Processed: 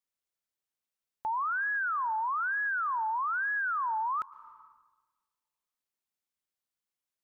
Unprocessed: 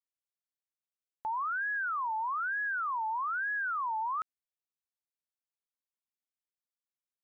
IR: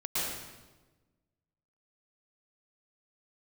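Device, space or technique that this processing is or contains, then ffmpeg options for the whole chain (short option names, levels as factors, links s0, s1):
ducked reverb: -filter_complex "[0:a]asplit=3[s0][s1][s2];[1:a]atrim=start_sample=2205[s3];[s1][s3]afir=irnorm=-1:irlink=0[s4];[s2]apad=whole_len=319179[s5];[s4][s5]sidechaincompress=threshold=0.00501:ratio=8:attack=16:release=406,volume=0.168[s6];[s0][s6]amix=inputs=2:normalize=0,volume=1.26"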